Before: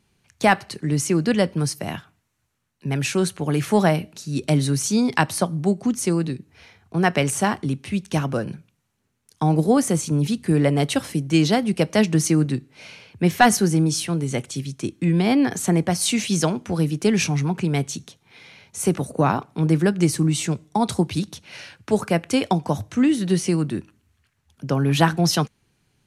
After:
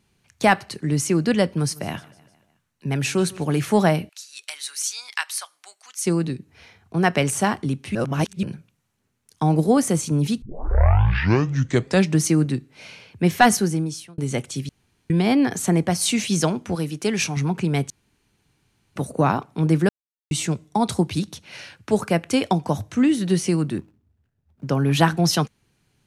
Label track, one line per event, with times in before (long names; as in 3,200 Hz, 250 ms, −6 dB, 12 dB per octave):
1.500000	3.590000	repeating echo 153 ms, feedback 56%, level −22 dB
4.090000	6.060000	Bessel high-pass filter 1,800 Hz, order 4
7.950000	8.430000	reverse
10.420000	10.420000	tape start 1.77 s
13.500000	14.180000	fade out
14.690000	15.100000	fill with room tone
16.750000	17.370000	low-shelf EQ 360 Hz −7.5 dB
17.900000	18.960000	fill with room tone
19.890000	20.310000	silence
23.780000	24.690000	running median over 41 samples